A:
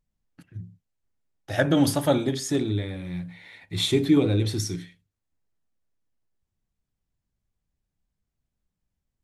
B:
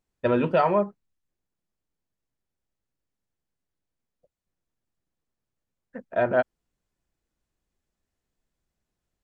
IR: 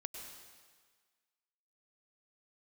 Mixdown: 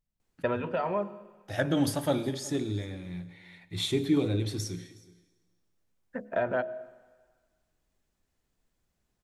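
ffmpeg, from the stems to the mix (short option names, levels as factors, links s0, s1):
-filter_complex "[0:a]volume=0.398,asplit=4[s0][s1][s2][s3];[s1]volume=0.376[s4];[s2]volume=0.0841[s5];[1:a]bandreject=f=70.33:t=h:w=4,bandreject=f=140.66:t=h:w=4,bandreject=f=210.99:t=h:w=4,bandreject=f=281.32:t=h:w=4,bandreject=f=351.65:t=h:w=4,bandreject=f=421.98:t=h:w=4,bandreject=f=492.31:t=h:w=4,bandreject=f=562.64:t=h:w=4,bandreject=f=632.97:t=h:w=4,bandreject=f=703.3:t=h:w=4,acrossover=split=620|2300[s6][s7][s8];[s6]acompressor=threshold=0.0141:ratio=4[s9];[s7]acompressor=threshold=0.0158:ratio=4[s10];[s8]acompressor=threshold=0.002:ratio=4[s11];[s9][s10][s11]amix=inputs=3:normalize=0,adelay=200,volume=1.33,asplit=2[s12][s13];[s13]volume=0.282[s14];[s3]apad=whole_len=416217[s15];[s12][s15]sidechaincompress=threshold=0.00708:ratio=8:attack=6.7:release=918[s16];[2:a]atrim=start_sample=2205[s17];[s4][s14]amix=inputs=2:normalize=0[s18];[s18][s17]afir=irnorm=-1:irlink=0[s19];[s5]aecho=0:1:368:1[s20];[s0][s16][s19][s20]amix=inputs=4:normalize=0"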